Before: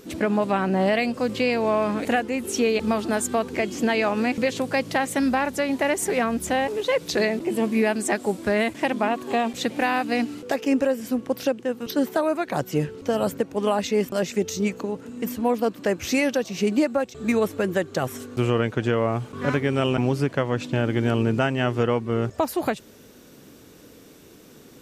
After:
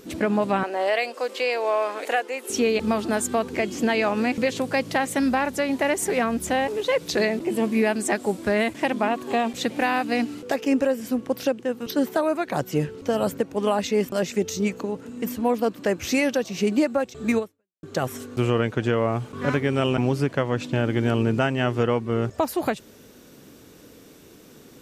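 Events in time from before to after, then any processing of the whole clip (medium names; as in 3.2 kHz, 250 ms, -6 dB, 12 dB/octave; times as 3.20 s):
0.63–2.50 s: high-pass 420 Hz 24 dB/octave
17.38–17.83 s: fade out exponential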